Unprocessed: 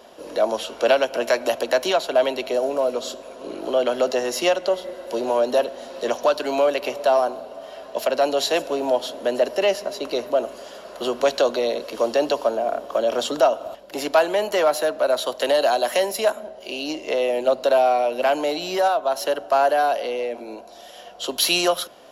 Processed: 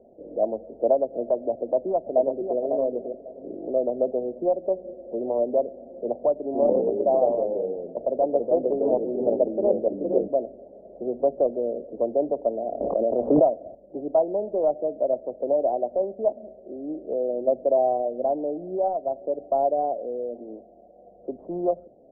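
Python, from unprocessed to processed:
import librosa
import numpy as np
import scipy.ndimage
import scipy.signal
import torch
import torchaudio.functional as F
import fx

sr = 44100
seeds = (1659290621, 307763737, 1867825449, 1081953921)

y = fx.echo_throw(x, sr, start_s=1.51, length_s=1.06, ms=550, feedback_pct=25, wet_db=-5.0)
y = fx.echo_pitch(y, sr, ms=81, semitones=-2, count=3, db_per_echo=-3.0, at=(6.46, 10.28))
y = fx.pre_swell(y, sr, db_per_s=26.0, at=(12.8, 13.51))
y = fx.wiener(y, sr, points=41)
y = scipy.signal.sosfilt(scipy.signal.butter(6, 750.0, 'lowpass', fs=sr, output='sos'), y)
y = y * librosa.db_to_amplitude(-1.0)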